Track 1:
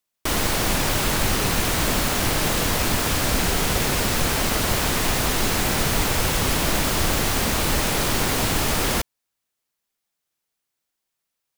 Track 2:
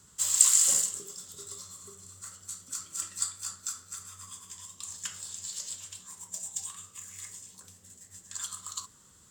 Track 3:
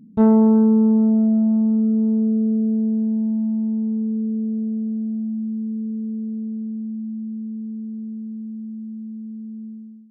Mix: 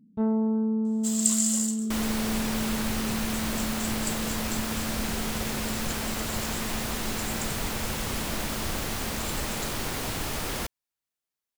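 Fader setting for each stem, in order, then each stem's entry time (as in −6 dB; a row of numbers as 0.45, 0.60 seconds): −9.5, −4.0, −11.5 decibels; 1.65, 0.85, 0.00 seconds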